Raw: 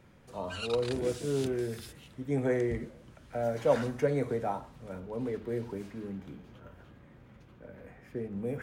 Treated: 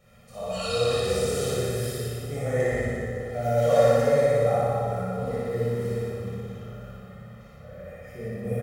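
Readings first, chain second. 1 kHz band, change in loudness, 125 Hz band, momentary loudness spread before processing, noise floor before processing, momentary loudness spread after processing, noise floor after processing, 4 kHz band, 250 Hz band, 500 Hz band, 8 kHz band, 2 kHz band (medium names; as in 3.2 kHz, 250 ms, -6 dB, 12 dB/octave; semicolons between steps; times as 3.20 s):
+9.0 dB, +7.5 dB, +9.0 dB, 21 LU, -57 dBFS, 21 LU, -47 dBFS, +9.5 dB, +1.5 dB, +8.5 dB, no reading, +8.0 dB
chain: treble shelf 5.2 kHz +9.5 dB; comb 1.6 ms, depth 98%; flutter echo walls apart 10.2 m, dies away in 1.3 s; plate-style reverb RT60 2.5 s, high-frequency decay 0.5×, DRR -8 dB; trim -7 dB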